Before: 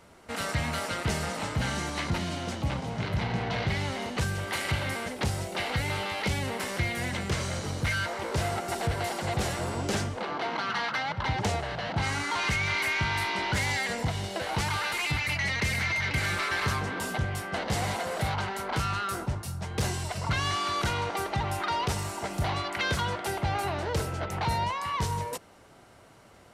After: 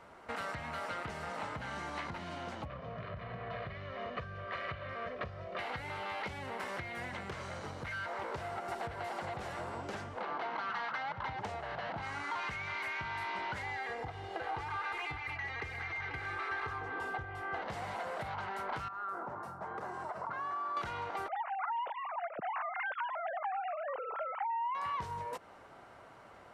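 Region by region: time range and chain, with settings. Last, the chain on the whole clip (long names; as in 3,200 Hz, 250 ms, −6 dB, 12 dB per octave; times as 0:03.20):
0:02.65–0:05.59: Butterworth band-reject 840 Hz, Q 4.2 + high-frequency loss of the air 240 metres + comb filter 1.7 ms, depth 50%
0:13.62–0:17.62: high-shelf EQ 4,000 Hz −9.5 dB + comb filter 2.5 ms, depth 66%
0:18.88–0:20.77: high-pass filter 240 Hz + high shelf with overshoot 1,900 Hz −12.5 dB, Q 1.5 + downward compressor 5 to 1, threshold −37 dBFS
0:21.28–0:24.75: three sine waves on the formant tracks + low-pass filter 3,000 Hz + downward compressor, threshold −27 dBFS
whole clip: high-shelf EQ 4,700 Hz −7 dB; downward compressor, threshold −37 dBFS; parametric band 1,100 Hz +10.5 dB 2.7 octaves; level −7 dB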